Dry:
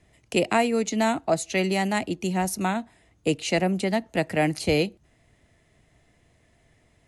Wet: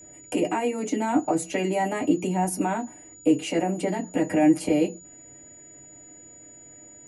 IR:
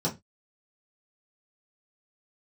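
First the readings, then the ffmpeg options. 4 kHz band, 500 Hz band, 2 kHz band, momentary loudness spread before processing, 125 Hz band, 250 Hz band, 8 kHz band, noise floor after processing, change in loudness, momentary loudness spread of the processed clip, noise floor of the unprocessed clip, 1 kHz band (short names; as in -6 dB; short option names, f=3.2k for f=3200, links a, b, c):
-7.0 dB, -1.0 dB, -6.0 dB, 5 LU, -3.5 dB, +3.0 dB, 0.0 dB, -48 dBFS, 0.0 dB, 7 LU, -63 dBFS, -0.5 dB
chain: -filter_complex "[0:a]alimiter=limit=-20.5dB:level=0:latency=1:release=27,acompressor=threshold=-30dB:ratio=2.5,bandreject=f=60:t=h:w=6,bandreject=f=120:t=h:w=6,bandreject=f=180:t=h:w=6[a];[1:a]atrim=start_sample=2205,asetrate=83790,aresample=44100[b];[a][b]afir=irnorm=-1:irlink=0,aeval=exprs='val(0)+0.00501*sin(2*PI*6900*n/s)':c=same"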